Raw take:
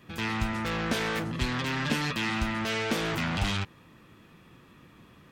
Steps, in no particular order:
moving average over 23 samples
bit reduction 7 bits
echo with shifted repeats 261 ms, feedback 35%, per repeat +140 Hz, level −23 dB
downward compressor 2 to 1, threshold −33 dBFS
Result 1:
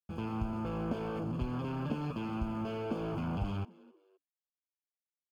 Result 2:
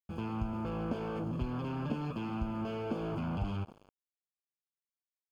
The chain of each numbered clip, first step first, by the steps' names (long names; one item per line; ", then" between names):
downward compressor, then bit reduction, then echo with shifted repeats, then moving average
echo with shifted repeats, then bit reduction, then downward compressor, then moving average